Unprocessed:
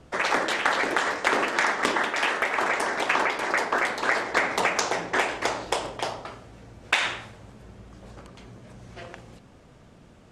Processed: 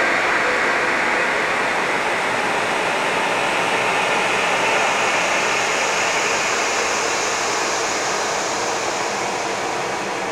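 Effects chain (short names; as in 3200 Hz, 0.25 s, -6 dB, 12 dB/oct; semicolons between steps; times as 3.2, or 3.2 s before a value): grains 0.1 s, spray 13 ms, pitch spread up and down by 3 st; Paulstretch 17×, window 0.50 s, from 4.39; gain +6.5 dB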